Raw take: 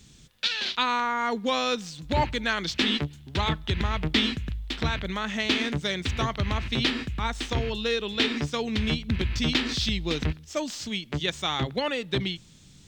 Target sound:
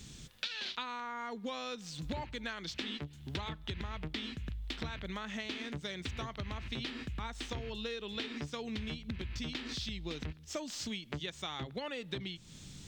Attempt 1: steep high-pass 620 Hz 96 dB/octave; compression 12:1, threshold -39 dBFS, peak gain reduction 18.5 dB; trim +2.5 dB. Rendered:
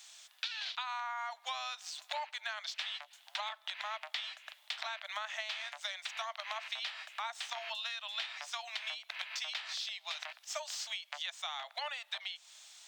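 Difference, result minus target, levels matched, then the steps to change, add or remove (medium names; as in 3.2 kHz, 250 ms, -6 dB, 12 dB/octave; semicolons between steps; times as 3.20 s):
500 Hz band -7.5 dB
remove: steep high-pass 620 Hz 96 dB/octave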